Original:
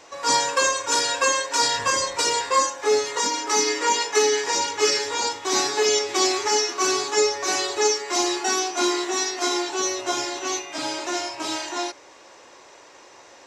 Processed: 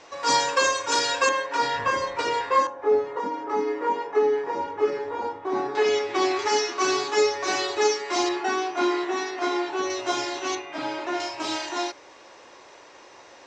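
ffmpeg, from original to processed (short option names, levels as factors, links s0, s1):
-af "asetnsamples=n=441:p=0,asendcmd='1.29 lowpass f 2400;2.67 lowpass f 1000;5.75 lowpass f 2600;6.39 lowpass f 4300;8.29 lowpass f 2500;9.9 lowpass f 4800;10.55 lowpass f 2500;11.2 lowpass f 5500',lowpass=5500"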